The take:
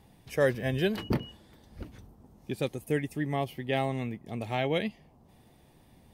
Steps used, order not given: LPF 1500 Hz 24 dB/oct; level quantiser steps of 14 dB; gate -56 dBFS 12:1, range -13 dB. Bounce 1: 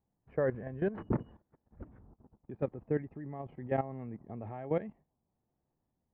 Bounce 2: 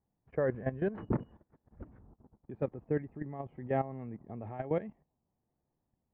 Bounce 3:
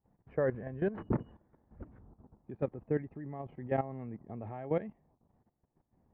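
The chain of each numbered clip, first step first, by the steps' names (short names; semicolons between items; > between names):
LPF > level quantiser > gate; level quantiser > LPF > gate; LPF > gate > level quantiser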